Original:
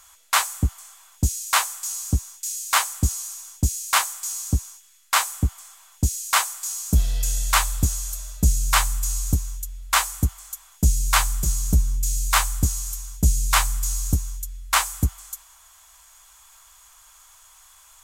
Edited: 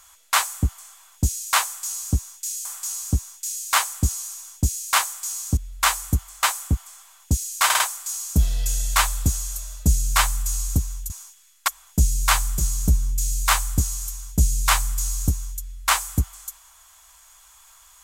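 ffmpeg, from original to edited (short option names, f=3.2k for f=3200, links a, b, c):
-filter_complex "[0:a]asplit=9[a][b][c][d][e][f][g][h][i];[a]atrim=end=2.652[j];[b]atrim=start=1.648:end=4.572[k];[c]atrim=start=9.668:end=10.532[l];[d]atrim=start=5.148:end=6.422[m];[e]atrim=start=6.368:end=6.422[n];[f]atrim=start=6.368:end=6.422[o];[g]atrim=start=6.368:end=9.672[p];[h]atrim=start=4.568:end=5.152[q];[i]atrim=start=10.528[r];[j][k]acrossfade=d=0.004:c1=hsin:c2=hsin[s];[s][l]acrossfade=d=0.004:c1=hsin:c2=hsin[t];[t][m]acrossfade=d=0.004:c1=hsin:c2=hsin[u];[u][n]acrossfade=d=0.004:c1=hsin:c2=hsin[v];[v][o]acrossfade=d=0.004:c1=hsin:c2=hsin[w];[w][p]acrossfade=d=0.004:c1=hsin:c2=hsin[x];[x][q]acrossfade=d=0.004:c1=hsin:c2=hsin[y];[y][r]acrossfade=d=0.004:c1=hsin:c2=hsin"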